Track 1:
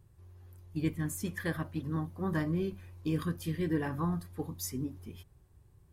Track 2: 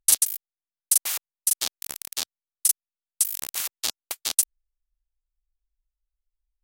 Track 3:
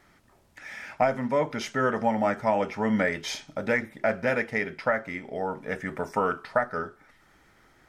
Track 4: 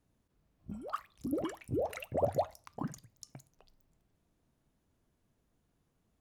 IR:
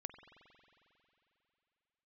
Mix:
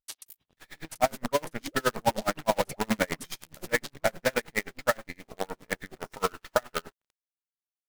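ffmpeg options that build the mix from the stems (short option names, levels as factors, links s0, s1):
-filter_complex "[0:a]acrusher=bits=5:dc=4:mix=0:aa=0.000001,lowpass=4300,volume=0.562[s0];[1:a]acrossover=split=5300[s1][s2];[s2]acompressor=threshold=0.0447:ratio=4:attack=1:release=60[s3];[s1][s3]amix=inputs=2:normalize=0,volume=0.251,asplit=2[s4][s5];[s5]volume=0.501[s6];[2:a]highpass=f=120:p=1,acrusher=bits=5:dc=4:mix=0:aa=0.000001,volume=1.33[s7];[3:a]adelay=350,volume=1.06[s8];[4:a]atrim=start_sample=2205[s9];[s6][s9]afir=irnorm=-1:irlink=0[s10];[s0][s4][s7][s8][s10]amix=inputs=5:normalize=0,aeval=exprs='val(0)*pow(10,-34*(0.5-0.5*cos(2*PI*9.6*n/s))/20)':c=same"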